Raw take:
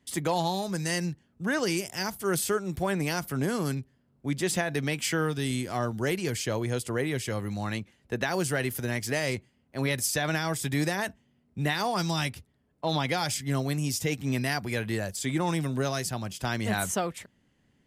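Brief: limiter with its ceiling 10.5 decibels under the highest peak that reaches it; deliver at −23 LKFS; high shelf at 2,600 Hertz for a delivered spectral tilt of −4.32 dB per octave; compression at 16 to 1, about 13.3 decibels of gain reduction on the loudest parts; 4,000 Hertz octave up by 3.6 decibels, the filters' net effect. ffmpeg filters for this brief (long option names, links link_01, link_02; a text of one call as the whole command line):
ffmpeg -i in.wav -af "highshelf=frequency=2600:gain=-3.5,equalizer=frequency=4000:width_type=o:gain=7.5,acompressor=threshold=-36dB:ratio=16,volume=20dB,alimiter=limit=-13dB:level=0:latency=1" out.wav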